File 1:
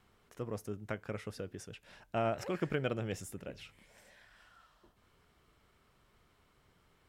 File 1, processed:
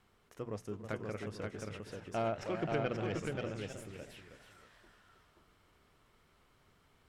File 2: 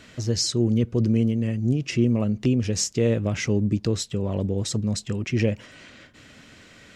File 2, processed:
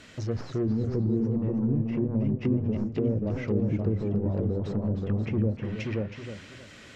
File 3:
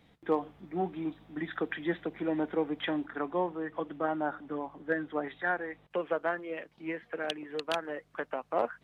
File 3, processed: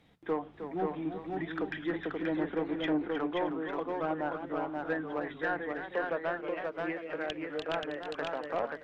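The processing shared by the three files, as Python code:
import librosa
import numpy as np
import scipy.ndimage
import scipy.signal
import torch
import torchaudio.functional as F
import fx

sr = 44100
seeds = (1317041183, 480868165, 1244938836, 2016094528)

p1 = fx.tracing_dist(x, sr, depth_ms=0.031)
p2 = 10.0 ** (-26.5 / 20.0) * (np.abs((p1 / 10.0 ** (-26.5 / 20.0) + 3.0) % 4.0 - 2.0) - 1.0)
p3 = p1 + (p2 * librosa.db_to_amplitude(-7.0))
p4 = fx.hum_notches(p3, sr, base_hz=60, count=4)
p5 = p4 + fx.echo_single(p4, sr, ms=530, db=-3.5, dry=0)
p6 = fx.env_lowpass_down(p5, sr, base_hz=440.0, full_db=-17.5)
p7 = fx.echo_warbled(p6, sr, ms=316, feedback_pct=31, rate_hz=2.8, cents=141, wet_db=-9.5)
y = p7 * librosa.db_to_amplitude(-4.5)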